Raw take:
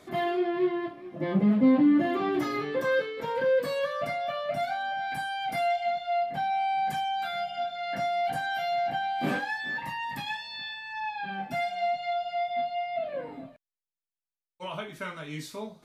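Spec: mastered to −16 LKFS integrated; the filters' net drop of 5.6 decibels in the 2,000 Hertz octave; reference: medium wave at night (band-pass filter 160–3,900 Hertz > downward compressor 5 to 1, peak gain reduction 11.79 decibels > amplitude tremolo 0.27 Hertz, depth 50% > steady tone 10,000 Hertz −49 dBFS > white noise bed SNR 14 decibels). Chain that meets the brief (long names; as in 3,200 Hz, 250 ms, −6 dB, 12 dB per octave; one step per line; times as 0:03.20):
band-pass filter 160–3,900 Hz
parametric band 2,000 Hz −7 dB
downward compressor 5 to 1, threshold −30 dBFS
amplitude tremolo 0.27 Hz, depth 50%
steady tone 10,000 Hz −49 dBFS
white noise bed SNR 14 dB
level +20.5 dB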